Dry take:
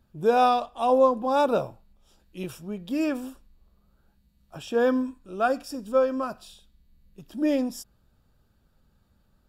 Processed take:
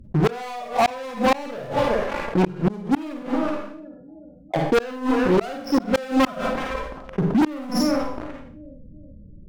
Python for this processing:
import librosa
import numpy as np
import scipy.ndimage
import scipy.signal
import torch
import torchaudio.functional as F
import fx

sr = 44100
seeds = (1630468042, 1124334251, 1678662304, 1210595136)

y = fx.env_lowpass(x, sr, base_hz=790.0, full_db=-22.5)
y = fx.highpass(y, sr, hz=430.0, slope=6, at=(3.22, 5.23))
y = fx.echo_bbd(y, sr, ms=374, stages=4096, feedback_pct=38, wet_db=-24)
y = fx.spec_topn(y, sr, count=16)
y = fx.leveller(y, sr, passes=5)
y = fx.rider(y, sr, range_db=10, speed_s=0.5)
y = fx.rev_schroeder(y, sr, rt60_s=0.41, comb_ms=38, drr_db=1.0)
y = fx.gate_flip(y, sr, shuts_db=-7.0, range_db=-39)
y = fx.fold_sine(y, sr, drive_db=6, ceiling_db=-6.5)
y = fx.env_flatten(y, sr, amount_pct=50)
y = y * 10.0 ** (-7.5 / 20.0)